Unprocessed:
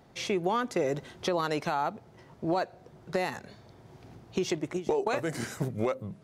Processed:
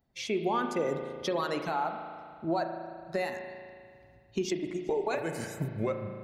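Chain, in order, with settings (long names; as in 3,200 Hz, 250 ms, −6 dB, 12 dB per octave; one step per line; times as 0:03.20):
spectral dynamics exaggerated over time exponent 1.5
spring reverb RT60 2.1 s, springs 36 ms, chirp 45 ms, DRR 5.5 dB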